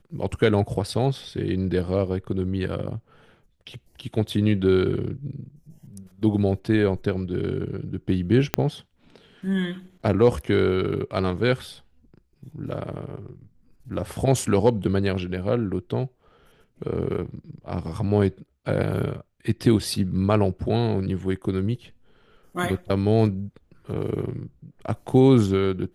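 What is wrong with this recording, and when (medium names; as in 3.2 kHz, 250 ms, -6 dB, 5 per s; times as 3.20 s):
8.54 s: pop -4 dBFS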